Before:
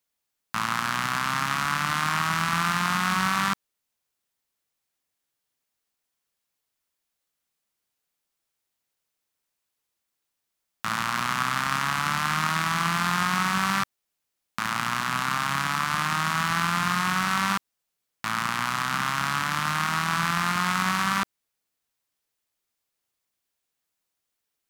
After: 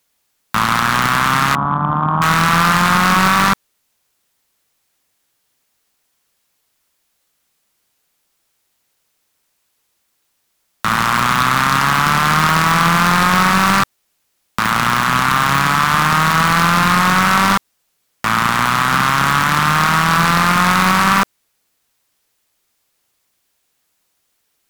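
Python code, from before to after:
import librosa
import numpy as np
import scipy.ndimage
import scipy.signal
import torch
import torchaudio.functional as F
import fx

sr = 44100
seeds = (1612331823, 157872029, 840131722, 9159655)

y = fx.steep_lowpass(x, sr, hz=1100.0, slope=36, at=(1.55, 2.22))
y = fx.fold_sine(y, sr, drive_db=9, ceiling_db=-7.5)
y = y * 10.0 ** (2.0 / 20.0)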